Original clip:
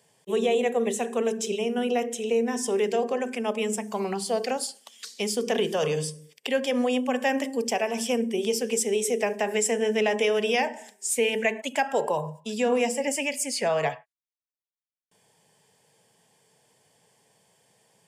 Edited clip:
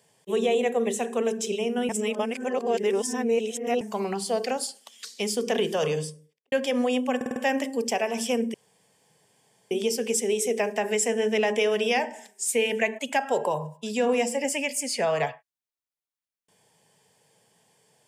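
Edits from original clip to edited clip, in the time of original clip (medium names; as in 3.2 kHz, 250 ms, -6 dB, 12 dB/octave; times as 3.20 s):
1.89–3.81 s: reverse
5.88–6.52 s: studio fade out
7.16 s: stutter 0.05 s, 5 plays
8.34 s: insert room tone 1.17 s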